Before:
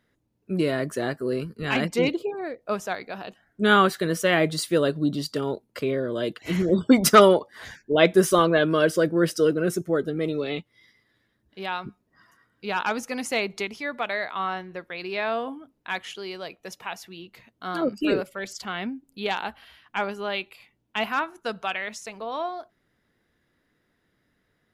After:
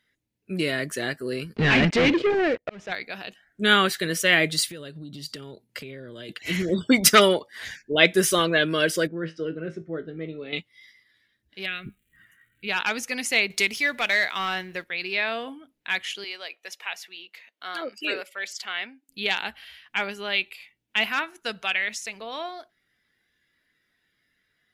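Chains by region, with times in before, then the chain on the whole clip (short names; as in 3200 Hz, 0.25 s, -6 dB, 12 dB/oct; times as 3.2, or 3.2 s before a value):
1.56–2.92 sample leveller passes 5 + tape spacing loss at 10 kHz 31 dB + auto swell 0.734 s
4.66–6.29 bell 130 Hz +6.5 dB 1.3 oct + compressor, threshold -34 dBFS
9.07–10.53 tape spacing loss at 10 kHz 38 dB + resonator 54 Hz, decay 0.22 s, mix 70%
11.65–12.67 low shelf 110 Hz +11 dB + crackle 460/s -60 dBFS + fixed phaser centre 2200 Hz, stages 4
13.5–14.84 high shelf 8200 Hz +10 dB + sample leveller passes 1
16.24–19.09 HPF 550 Hz + high shelf 5100 Hz -6 dB
whole clip: spectral noise reduction 6 dB; resonant high shelf 1500 Hz +8 dB, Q 1.5; gain -3 dB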